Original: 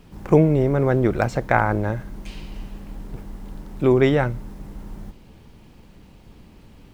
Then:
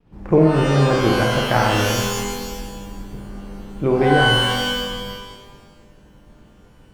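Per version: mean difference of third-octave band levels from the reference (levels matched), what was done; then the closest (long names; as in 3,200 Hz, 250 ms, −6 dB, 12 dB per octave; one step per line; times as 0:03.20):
8.5 dB: downward expander −42 dBFS
low-pass filter 1,700 Hz 6 dB per octave
on a send: flutter between parallel walls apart 8.6 metres, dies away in 0.52 s
on the sum: reverb with rising layers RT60 1.2 s, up +12 semitones, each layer −2 dB, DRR 3.5 dB
level −1 dB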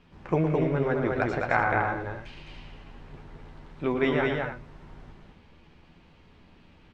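5.5 dB: low-pass filter 3,100 Hz 12 dB per octave
tilt shelving filter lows −5 dB, about 880 Hz
double-tracking delay 12 ms −7 dB
loudspeakers that aren't time-aligned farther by 39 metres −8 dB, 73 metres −3 dB, 100 metres −10 dB
level −7 dB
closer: second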